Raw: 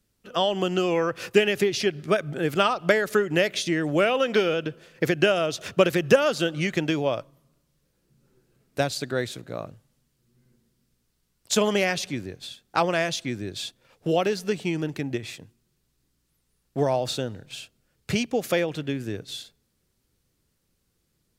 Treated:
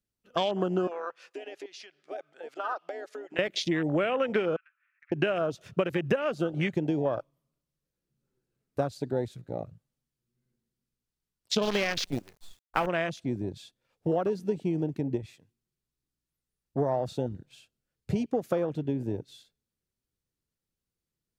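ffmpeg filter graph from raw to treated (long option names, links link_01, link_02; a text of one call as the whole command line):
ffmpeg -i in.wav -filter_complex "[0:a]asettb=1/sr,asplit=3[link_01][link_02][link_03];[link_01]atrim=end=0.874[link_04];[link_02]atrim=start=0.87:end=3.39,asetpts=PTS-STARTPTS,afade=type=in:duration=0.004:curve=qsin,afade=type=out:start_time=2.516:duration=0.004:curve=qsin,acompressor=threshold=-22dB:ratio=16:attack=3.2:release=140:knee=1:detection=peak,highpass=720,lowpass=6800[link_05];[link_03]atrim=start=3.386[link_06];[link_04][link_05]acrossfade=duration=0.004:curve1=hsin:curve2=qsin[link_07];[link_07][link_06]acrossfade=duration=0.004:curve1=qsin:curve2=hsin,asettb=1/sr,asplit=3[link_08][link_09][link_10];[link_08]atrim=end=4.564[link_11];[link_09]atrim=start=4.56:end=5.12,asetpts=PTS-STARTPTS,afade=type=in:duration=0.004:curve=qsin,afade=type=out:start_time=0.556:duration=0.004:curve=qsin,asuperpass=centerf=1700:order=8:qfactor=1.3,acompressor=threshold=-38dB:ratio=5:attack=3.2:release=140:knee=1:detection=peak,aeval=exprs='(tanh(11.2*val(0)+0.15)-tanh(0.15))/11.2':channel_layout=same[link_12];[link_10]atrim=start=5.116[link_13];[link_11][link_12]acrossfade=duration=0.004:curve1=hsin:curve2=qsin[link_14];[link_14][link_13]acrossfade=duration=0.004:curve1=qsin:curve2=hsin,asettb=1/sr,asplit=3[link_15][link_16][link_17];[link_15]atrim=end=11.624[link_18];[link_16]atrim=start=11.62:end=12.87,asetpts=PTS-STARTPTS,afade=type=in:duration=0.004:curve=qsin,afade=type=out:start_time=1.246:duration=0.004:curve=qsin,highshelf=frequency=4100:gain=7,acrusher=bits=5:dc=4:mix=0:aa=0.000001[link_19];[link_17]atrim=start=12.866[link_20];[link_18][link_19]acrossfade=duration=0.004:curve1=hsin:curve2=qsin[link_21];[link_21][link_20]acrossfade=duration=0.004:curve1=qsin:curve2=hsin,afwtdn=0.0355,acompressor=threshold=-23dB:ratio=6" out.wav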